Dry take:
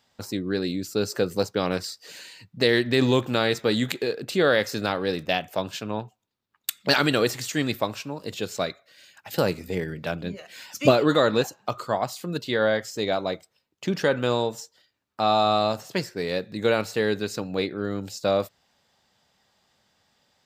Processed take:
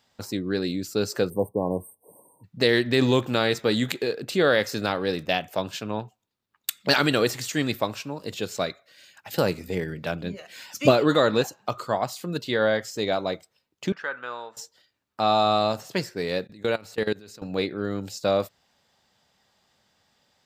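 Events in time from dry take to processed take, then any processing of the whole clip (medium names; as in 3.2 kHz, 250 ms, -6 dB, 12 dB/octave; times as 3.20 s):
1.29–2.44 s: spectral selection erased 1.1–8.3 kHz
13.92–14.57 s: band-pass filter 1.4 kHz, Q 2.4
16.47–17.42 s: level held to a coarse grid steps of 23 dB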